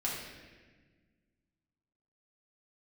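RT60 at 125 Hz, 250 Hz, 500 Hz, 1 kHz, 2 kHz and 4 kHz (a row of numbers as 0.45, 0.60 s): 2.3, 2.2, 1.6, 1.2, 1.5, 1.1 s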